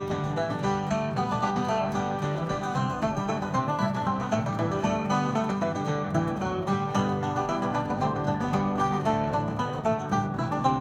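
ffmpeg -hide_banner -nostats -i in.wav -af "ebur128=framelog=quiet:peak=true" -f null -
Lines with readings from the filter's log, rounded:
Integrated loudness:
  I:         -27.5 LUFS
  Threshold: -37.5 LUFS
Loudness range:
  LRA:         0.9 LU
  Threshold: -47.5 LUFS
  LRA low:   -28.0 LUFS
  LRA high:  -27.1 LUFS
True peak:
  Peak:      -11.5 dBFS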